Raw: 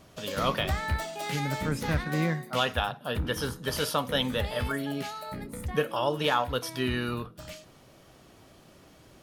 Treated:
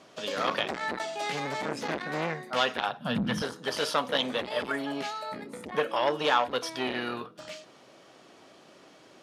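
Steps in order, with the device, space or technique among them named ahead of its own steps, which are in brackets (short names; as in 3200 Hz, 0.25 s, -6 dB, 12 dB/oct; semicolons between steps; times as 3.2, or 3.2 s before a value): public-address speaker with an overloaded transformer (core saturation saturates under 1200 Hz; BPF 280–6700 Hz); 2.99–3.42 resonant low shelf 270 Hz +11 dB, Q 3; gain +3 dB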